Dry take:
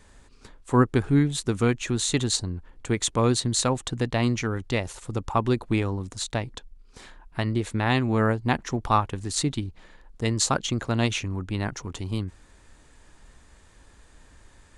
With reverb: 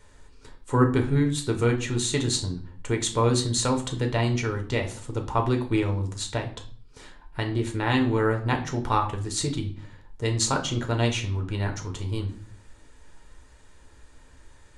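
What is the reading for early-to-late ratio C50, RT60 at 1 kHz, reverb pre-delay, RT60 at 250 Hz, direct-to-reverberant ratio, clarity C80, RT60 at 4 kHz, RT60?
11.0 dB, 0.45 s, 7 ms, 0.75 s, 3.0 dB, 15.5 dB, 0.40 s, 0.50 s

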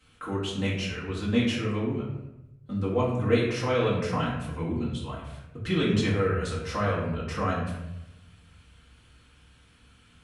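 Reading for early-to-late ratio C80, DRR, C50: 5.5 dB, −8.0 dB, 2.5 dB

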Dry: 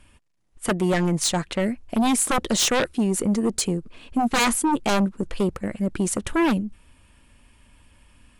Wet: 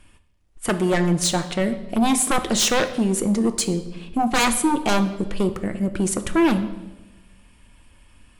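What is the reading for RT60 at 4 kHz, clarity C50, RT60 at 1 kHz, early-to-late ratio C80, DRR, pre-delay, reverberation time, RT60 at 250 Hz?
0.95 s, 12.0 dB, 0.95 s, 14.5 dB, 8.5 dB, 3 ms, 1.1 s, 1.4 s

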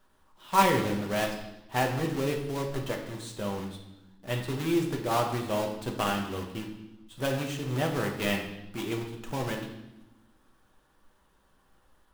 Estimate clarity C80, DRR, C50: 9.0 dB, 1.5 dB, 6.5 dB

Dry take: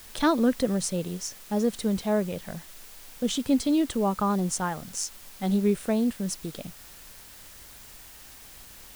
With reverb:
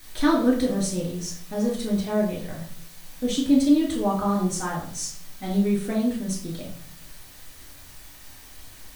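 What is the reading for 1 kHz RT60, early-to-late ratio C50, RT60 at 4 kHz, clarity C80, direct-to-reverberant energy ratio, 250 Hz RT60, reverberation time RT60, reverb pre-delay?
0.50 s, 6.0 dB, 0.45 s, 9.5 dB, −5.0 dB, 0.80 s, 0.55 s, 3 ms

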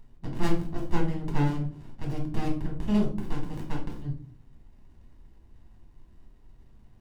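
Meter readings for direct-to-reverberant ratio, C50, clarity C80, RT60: −1.0 dB, 8.0 dB, 13.0 dB, 0.45 s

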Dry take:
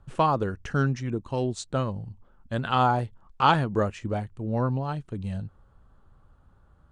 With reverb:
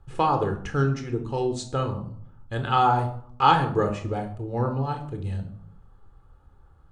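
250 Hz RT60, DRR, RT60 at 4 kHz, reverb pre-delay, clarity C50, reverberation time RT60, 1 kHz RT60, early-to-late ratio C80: 0.80 s, 5.5 dB, 0.35 s, 3 ms, 10.5 dB, 0.60 s, 0.55 s, 14.0 dB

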